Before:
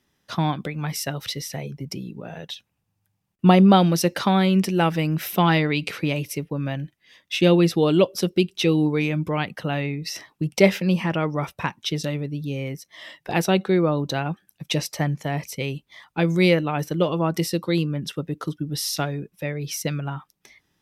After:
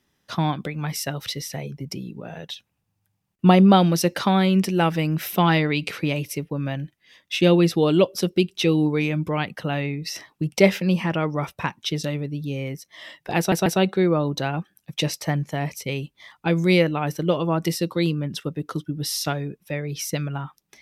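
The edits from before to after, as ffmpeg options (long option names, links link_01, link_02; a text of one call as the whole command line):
ffmpeg -i in.wav -filter_complex "[0:a]asplit=3[link_01][link_02][link_03];[link_01]atrim=end=13.522[link_04];[link_02]atrim=start=13.378:end=13.522[link_05];[link_03]atrim=start=13.378[link_06];[link_04][link_05]acrossfade=duration=0.004:curve1=hsin:curve2=hsin[link_07];[link_07][link_06]acrossfade=duration=0.004:curve1=hsin:curve2=hsin" out.wav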